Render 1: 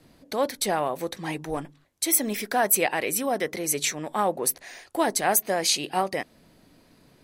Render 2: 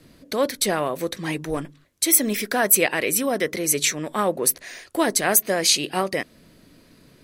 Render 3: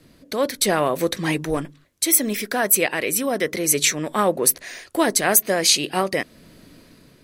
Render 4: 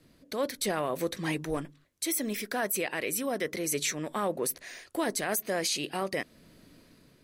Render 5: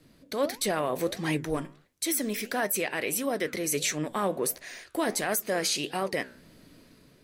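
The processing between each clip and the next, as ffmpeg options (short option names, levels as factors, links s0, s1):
-af "equalizer=f=810:w=2.9:g=-9,volume=1.78"
-af "dynaudnorm=f=200:g=7:m=3.76,volume=0.891"
-af "alimiter=limit=0.266:level=0:latency=1:release=11,volume=0.376"
-af "flanger=delay=6.5:depth=9.9:regen=81:speed=1.5:shape=sinusoidal,volume=2.11"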